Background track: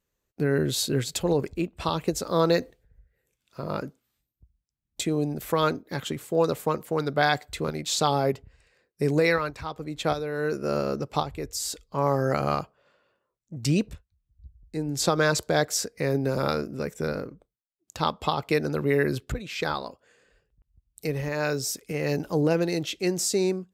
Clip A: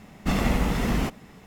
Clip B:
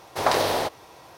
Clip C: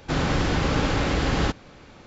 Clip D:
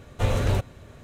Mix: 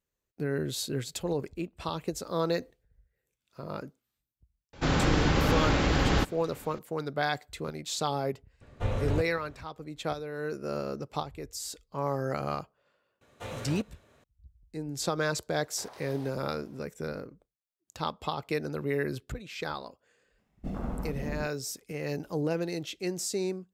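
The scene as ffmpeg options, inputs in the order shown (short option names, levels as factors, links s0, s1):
-filter_complex "[4:a]asplit=2[s0][s1];[0:a]volume=0.447[s2];[s0]lowpass=f=2500:p=1[s3];[s1]highpass=f=360:p=1[s4];[2:a]acompressor=threshold=0.0398:ratio=6:attack=3.2:release=140:knee=1:detection=peak[s5];[1:a]afwtdn=0.0447[s6];[3:a]atrim=end=2.06,asetpts=PTS-STARTPTS,volume=0.794,afade=t=in:d=0.004:c=hsin,afade=t=out:st=2.056:d=0.004:c=hsin,adelay=208593S[s7];[s3]atrim=end=1.03,asetpts=PTS-STARTPTS,volume=0.473,afade=t=in:d=0.004:c=hsin,afade=t=out:st=1.026:d=0.004:c=hsin,adelay=8610[s8];[s4]atrim=end=1.03,asetpts=PTS-STARTPTS,volume=0.316,afade=t=in:d=0.004:c=hsin,afade=t=out:st=1.026:d=0.004:c=hsin,adelay=13210[s9];[s5]atrim=end=1.17,asetpts=PTS-STARTPTS,volume=0.133,afade=t=in:d=0.004:c=hsin,afade=t=out:st=1.166:d=0.004:c=hsin,adelay=15620[s10];[s6]atrim=end=1.46,asetpts=PTS-STARTPTS,volume=0.282,afade=t=in:d=0.004:c=hsin,afade=t=out:st=1.456:d=0.004:c=hsin,adelay=20380[s11];[s2][s7][s8][s9][s10][s11]amix=inputs=6:normalize=0"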